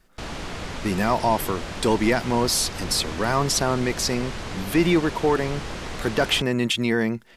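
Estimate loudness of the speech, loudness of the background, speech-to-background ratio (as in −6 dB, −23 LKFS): −23.0 LKFS, −33.5 LKFS, 10.5 dB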